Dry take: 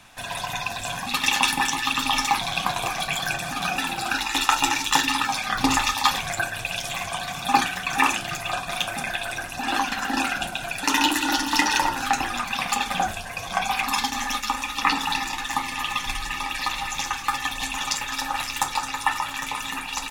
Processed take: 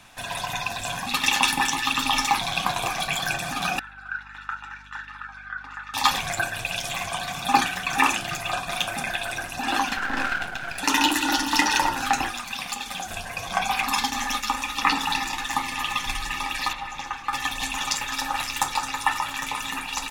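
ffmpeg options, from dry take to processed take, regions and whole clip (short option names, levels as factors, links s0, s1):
-filter_complex "[0:a]asettb=1/sr,asplit=3[s0][s1][s2];[s0]atrim=end=3.794[s3];[s1]atrim=start=3.79:end=5.94,asetpts=PTS-STARTPTS,afade=t=in:d=0.004:c=qsin,afade=t=out:st=2.146:d=0.004:c=qsin,bandpass=f=1500:t=q:w=11,aeval=exprs='val(0)+0.00282*(sin(2*PI*50*n/s)+sin(2*PI*2*50*n/s)/2+sin(2*PI*3*50*n/s)/3+sin(2*PI*4*50*n/s)/4+sin(2*PI*5*50*n/s)/5)':c=same[s4];[s2]atrim=start=5.936[s5];[s3][s4]acrossfade=d=0.004:c1=hsin:c2=qsin[s6];[s6][s5]acrossfade=d=0.004:c1=qsin:c2=hsin,asettb=1/sr,asplit=3[s7][s8][s9];[s7]atrim=end=9.974[s10];[s8]atrim=start=9.97:end=10.78,asetpts=PTS-STARTPTS,afade=t=in:d=0.004:c=qsin,afade=t=out:st=0.806:d=0.004:c=qsin,lowpass=f=2700:p=1,aeval=exprs='max(val(0),0)':c=same,equalizer=f=1500:w=2.7:g=11[s11];[s9]atrim=start=10.776[s12];[s10][s11]acrossfade=d=0.004:c1=hsin:c2=qsin[s13];[s13][s12]acrossfade=d=0.004:c1=qsin:c2=hsin,asettb=1/sr,asplit=3[s14][s15][s16];[s14]atrim=end=12.294[s17];[s15]atrim=start=12.29:end=13.11,asetpts=PTS-STARTPTS,afade=t=in:d=0.004:c=qsin,afade=t=out:st=0.816:d=0.004:c=qsin,acrossover=split=530|2900[s18][s19][s20];[s18]acompressor=threshold=0.00631:ratio=4[s21];[s19]acompressor=threshold=0.0158:ratio=4[s22];[s20]acompressor=threshold=0.0316:ratio=4[s23];[s21][s22][s23]amix=inputs=3:normalize=0,acrusher=bits=8:mode=log:mix=0:aa=0.000001[s24];[s16]atrim=start=13.106[s25];[s17][s24]acrossfade=d=0.004:c1=hsin:c2=qsin[s26];[s26][s25]acrossfade=d=0.004:c1=qsin:c2=hsin,asettb=1/sr,asplit=3[s27][s28][s29];[s27]atrim=end=16.734[s30];[s28]atrim=start=16.73:end=17.33,asetpts=PTS-STARTPTS,afade=t=in:d=0.004:c=qsin,afade=t=out:st=0.596:d=0.004:c=qsin,lowpass=f=1400:p=1,lowshelf=f=450:g=-5.5[s31];[s29]atrim=start=17.326[s32];[s30][s31]acrossfade=d=0.004:c1=hsin:c2=qsin[s33];[s33][s32]acrossfade=d=0.004:c1=qsin:c2=hsin"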